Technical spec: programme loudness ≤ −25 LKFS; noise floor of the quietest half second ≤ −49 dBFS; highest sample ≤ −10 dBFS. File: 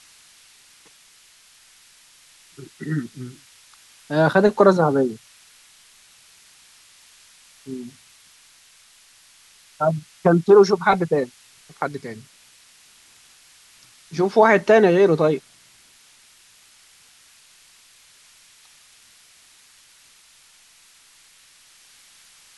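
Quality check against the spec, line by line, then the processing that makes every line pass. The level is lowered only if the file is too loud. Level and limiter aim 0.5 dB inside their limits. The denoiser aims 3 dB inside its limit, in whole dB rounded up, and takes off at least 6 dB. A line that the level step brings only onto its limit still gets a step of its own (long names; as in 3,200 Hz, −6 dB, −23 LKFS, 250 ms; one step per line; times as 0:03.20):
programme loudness −18.5 LKFS: out of spec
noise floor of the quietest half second −53 dBFS: in spec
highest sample −3.0 dBFS: out of spec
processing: level −7 dB
brickwall limiter −10.5 dBFS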